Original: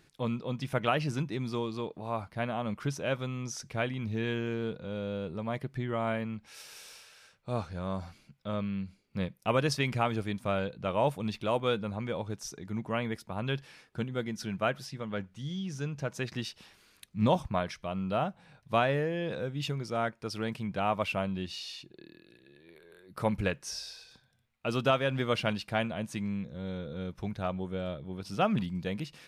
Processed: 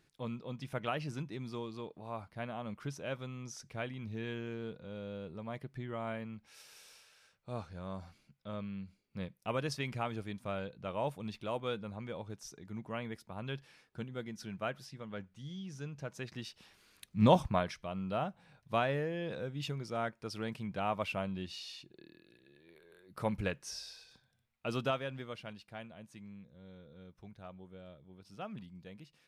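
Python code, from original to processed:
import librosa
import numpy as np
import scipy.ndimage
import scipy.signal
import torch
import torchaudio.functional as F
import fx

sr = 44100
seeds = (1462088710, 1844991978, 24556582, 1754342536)

y = fx.gain(x, sr, db=fx.line((16.4, -8.0), (17.37, 2.0), (17.87, -5.0), (24.78, -5.0), (25.38, -16.5)))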